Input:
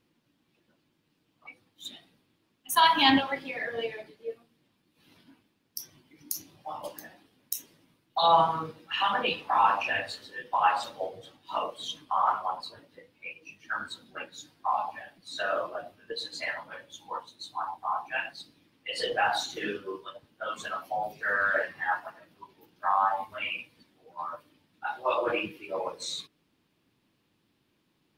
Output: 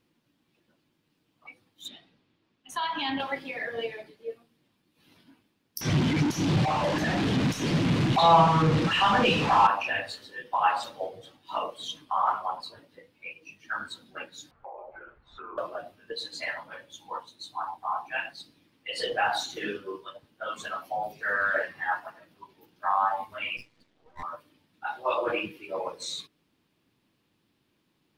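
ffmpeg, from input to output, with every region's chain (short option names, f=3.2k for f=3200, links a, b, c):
-filter_complex "[0:a]asettb=1/sr,asplit=3[a][b][c];[a]atrim=end=1.884[d];[b]atrim=start=1.88:end=3.2,asetpts=PTS-STARTPTS,afade=t=in:d=0.004:c=qsin,afade=t=out:st=1.316:d=0.004:c=qsin,lowpass=5k,acompressor=threshold=-31dB:ratio=2.5:attack=3.2:release=140:knee=1:detection=peak[e];[c]atrim=start=3.196[f];[d][e]acrossfade=d=0.004:c1=hsin:c2=qsin[g];[g][f]acrossfade=d=0.004:c1=qsin:c2=hsin,asettb=1/sr,asplit=3[h][i][j];[h]atrim=end=5.814[k];[i]atrim=start=5.81:end=9.67,asetpts=PTS-STARTPTS,afade=t=in:d=0.004:c=qsin,afade=t=out:st=3.856:d=0.004:c=qsin,aeval=exprs='val(0)+0.5*0.0668*sgn(val(0))':c=same,lowpass=4.1k,equalizer=f=140:w=0.71:g=11.5[l];[j]atrim=start=9.666[m];[k][l]acrossfade=d=0.004:c1=hsin:c2=qsin[n];[n][m]acrossfade=d=0.004:c1=qsin:c2=hsin,asettb=1/sr,asplit=3[o][p][q];[o]atrim=end=14.514[r];[p]atrim=start=14.51:end=15.58,asetpts=PTS-STARTPTS,afade=t=in:d=0.004:c=qsin,afade=t=out:st=1.066:d=0.004:c=qsin,lowpass=f=1.5k:t=q:w=2.4,afreqshift=-240,acompressor=threshold=-43dB:ratio=4:attack=3.2:release=140:knee=1:detection=peak[s];[q]atrim=start=15.576[t];[r][s]acrossfade=d=0.004:c1=hsin:c2=qsin[u];[u][t]acrossfade=d=0.004:c1=qsin:c2=hsin,asettb=1/sr,asplit=3[v][w][x];[v]atrim=end=23.574[y];[w]atrim=start=23.57:end=24.23,asetpts=PTS-STARTPTS,afade=t=in:d=0.004:c=qsin,afade=t=out:st=0.656:d=0.004:c=qsin,lowpass=5.2k,aeval=exprs='max(val(0),0)':c=same[z];[x]atrim=start=24.226[aa];[y][z]acrossfade=d=0.004:c1=hsin:c2=qsin[ab];[ab][aa]acrossfade=d=0.004:c1=qsin:c2=hsin"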